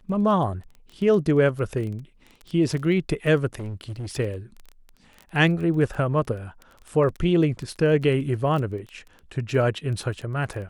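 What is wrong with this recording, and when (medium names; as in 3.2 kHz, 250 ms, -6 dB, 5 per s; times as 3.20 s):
crackle 14 per s -31 dBFS
3.59–4.20 s: clipped -28.5 dBFS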